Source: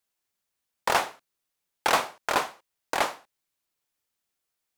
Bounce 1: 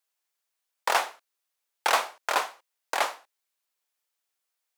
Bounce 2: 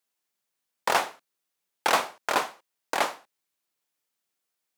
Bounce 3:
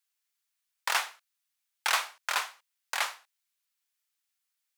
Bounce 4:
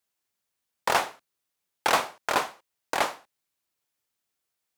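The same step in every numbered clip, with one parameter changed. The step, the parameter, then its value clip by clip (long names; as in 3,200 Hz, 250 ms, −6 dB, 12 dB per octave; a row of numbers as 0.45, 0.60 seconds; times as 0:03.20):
high-pass filter, corner frequency: 510, 150, 1,400, 46 Hertz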